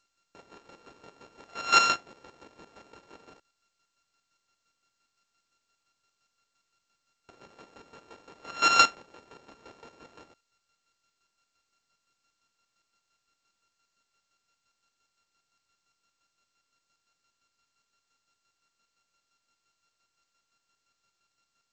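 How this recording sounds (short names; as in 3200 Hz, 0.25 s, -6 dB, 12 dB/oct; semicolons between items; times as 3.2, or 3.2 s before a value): a buzz of ramps at a fixed pitch in blocks of 32 samples; chopped level 5.8 Hz, depth 65%, duty 35%; G.722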